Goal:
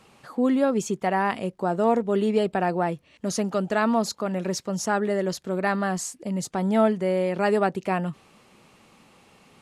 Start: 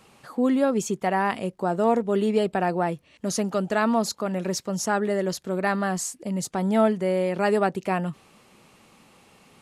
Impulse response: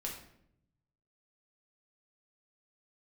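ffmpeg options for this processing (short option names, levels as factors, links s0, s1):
-af "highshelf=f=10000:g=-6.5"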